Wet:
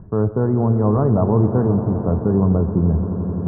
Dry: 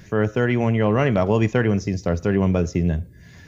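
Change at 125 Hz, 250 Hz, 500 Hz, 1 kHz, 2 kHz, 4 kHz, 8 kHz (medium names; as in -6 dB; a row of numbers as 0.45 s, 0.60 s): +4.5 dB, +3.5 dB, +1.0 dB, +1.0 dB, under -15 dB, under -40 dB, no reading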